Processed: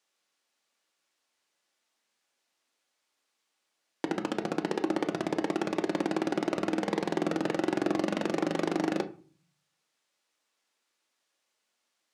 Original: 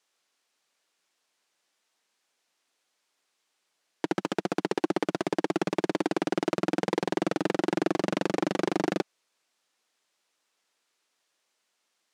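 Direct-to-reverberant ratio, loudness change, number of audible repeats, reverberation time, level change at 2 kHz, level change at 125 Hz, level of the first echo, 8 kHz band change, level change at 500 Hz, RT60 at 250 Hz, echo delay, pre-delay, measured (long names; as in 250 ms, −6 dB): 7.0 dB, −1.5 dB, no echo audible, 0.40 s, −2.5 dB, −2.5 dB, no echo audible, −3.0 dB, −2.0 dB, 0.65 s, no echo audible, 3 ms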